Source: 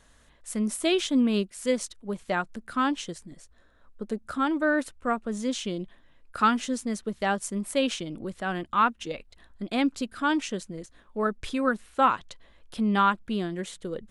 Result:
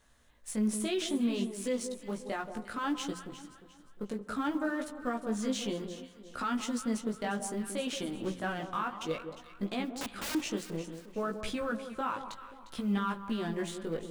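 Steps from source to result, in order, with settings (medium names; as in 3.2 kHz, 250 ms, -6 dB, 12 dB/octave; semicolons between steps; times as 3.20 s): companding laws mixed up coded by A; hum notches 60/120/180 Hz; in parallel at -1 dB: compression, threshold -34 dBFS, peak gain reduction 17 dB; on the sum: peak limiter -21 dBFS, peak gain reduction 12 dB; chorus 0.62 Hz, delay 15.5 ms, depth 3.9 ms; 9.92–10.35 s: integer overflow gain 31.5 dB; echo whose repeats swap between lows and highs 177 ms, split 1.1 kHz, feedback 57%, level -8 dB; on a send at -18 dB: reverberation RT60 1.8 s, pre-delay 49 ms; on the sum: trim -1 dB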